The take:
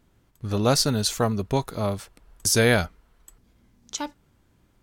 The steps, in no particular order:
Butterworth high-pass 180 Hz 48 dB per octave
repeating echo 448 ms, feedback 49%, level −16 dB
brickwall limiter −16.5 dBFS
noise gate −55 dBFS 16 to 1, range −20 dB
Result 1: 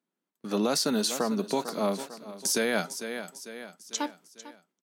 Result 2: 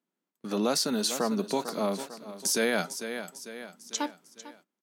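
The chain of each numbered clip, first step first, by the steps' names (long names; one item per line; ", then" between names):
Butterworth high-pass, then noise gate, then repeating echo, then brickwall limiter
repeating echo, then brickwall limiter, then Butterworth high-pass, then noise gate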